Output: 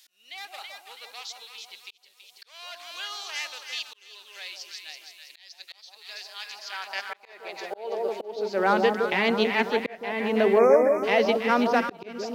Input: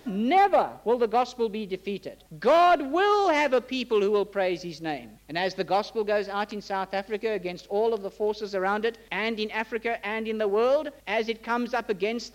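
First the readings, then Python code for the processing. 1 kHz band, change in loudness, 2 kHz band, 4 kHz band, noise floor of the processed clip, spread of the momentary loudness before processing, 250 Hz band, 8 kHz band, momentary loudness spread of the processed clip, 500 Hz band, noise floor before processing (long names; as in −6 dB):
−4.5 dB, +1.5 dB, +0.5 dB, +2.0 dB, −59 dBFS, 11 LU, −0.5 dB, can't be measured, 20 LU, −1.0 dB, −52 dBFS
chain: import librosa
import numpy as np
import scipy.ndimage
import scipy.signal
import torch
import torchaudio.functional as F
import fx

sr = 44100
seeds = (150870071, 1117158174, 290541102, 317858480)

y = fx.echo_alternate(x, sr, ms=164, hz=1000.0, feedback_pct=69, wet_db=-3.5)
y = fx.spec_erase(y, sr, start_s=10.58, length_s=0.46, low_hz=2500.0, high_hz=5100.0)
y = fx.auto_swell(y, sr, attack_ms=482.0)
y = fx.filter_sweep_highpass(y, sr, from_hz=3900.0, to_hz=110.0, start_s=6.32, end_s=9.1, q=0.86)
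y = F.gain(torch.from_numpy(y), 4.0).numpy()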